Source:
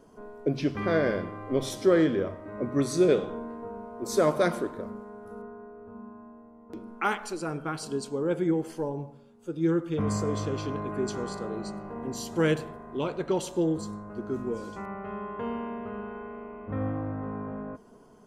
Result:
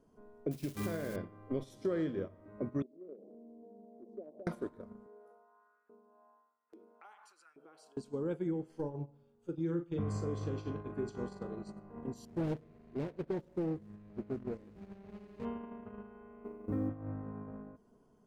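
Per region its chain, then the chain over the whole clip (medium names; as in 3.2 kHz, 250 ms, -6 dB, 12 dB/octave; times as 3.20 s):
0.51–1.16 s: zero-crossing glitches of -23.5 dBFS + compression, threshold -25 dBFS + doubling 48 ms -10 dB
2.82–4.47 s: elliptic band-pass 210–700 Hz + compression 3:1, threshold -38 dBFS
5.06–7.97 s: tremolo triangle 1.8 Hz, depth 55% + compression 3:1, threshold -44 dBFS + LFO high-pass saw up 1.2 Hz 350–1900 Hz
8.58–11.51 s: treble shelf 10 kHz -10.5 dB + doubling 41 ms -8 dB
12.25–15.45 s: median filter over 41 samples + loudspeaker Doppler distortion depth 0.54 ms
16.44–16.90 s: block-companded coder 7-bit + peaking EQ 330 Hz +14 dB 0.71 oct + band-stop 7.1 kHz, Q 14
whole clip: bass shelf 350 Hz +7.5 dB; compression 3:1, threshold -34 dBFS; gate -34 dBFS, range -14 dB; trim -2 dB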